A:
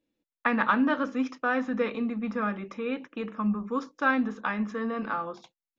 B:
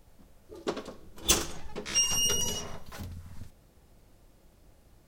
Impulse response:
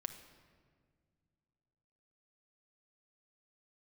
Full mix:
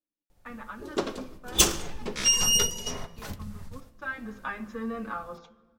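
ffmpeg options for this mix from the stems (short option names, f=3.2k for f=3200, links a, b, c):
-filter_complex "[0:a]bandreject=f=50:t=h:w=6,bandreject=f=100:t=h:w=6,bandreject=f=150:t=h:w=6,bandreject=f=200:t=h:w=6,asplit=2[a][b];[b]adelay=6.6,afreqshift=-1.2[c];[a][c]amix=inputs=2:normalize=1,volume=-5dB,afade=t=in:st=3.88:d=0.53:silence=0.223872,asplit=3[d][e][f];[e]volume=-4dB[g];[1:a]adelay=300,volume=1.5dB,asplit=2[h][i];[i]volume=-6dB[j];[f]apad=whole_len=237071[k];[h][k]sidechaingate=range=-33dB:threshold=-57dB:ratio=16:detection=peak[l];[2:a]atrim=start_sample=2205[m];[g][j]amix=inputs=2:normalize=0[n];[n][m]afir=irnorm=-1:irlink=0[o];[d][l][o]amix=inputs=3:normalize=0,bandreject=f=169.5:t=h:w=4,bandreject=f=339:t=h:w=4,bandreject=f=508.5:t=h:w=4,bandreject=f=678:t=h:w=4,bandreject=f=847.5:t=h:w=4,bandreject=f=1.017k:t=h:w=4,bandreject=f=1.1865k:t=h:w=4,bandreject=f=1.356k:t=h:w=4,bandreject=f=1.5255k:t=h:w=4,bandreject=f=1.695k:t=h:w=4,bandreject=f=1.8645k:t=h:w=4,bandreject=f=2.034k:t=h:w=4,bandreject=f=2.2035k:t=h:w=4,bandreject=f=2.373k:t=h:w=4,bandreject=f=2.5425k:t=h:w=4,bandreject=f=2.712k:t=h:w=4,bandreject=f=2.8815k:t=h:w=4,bandreject=f=3.051k:t=h:w=4,bandreject=f=3.2205k:t=h:w=4"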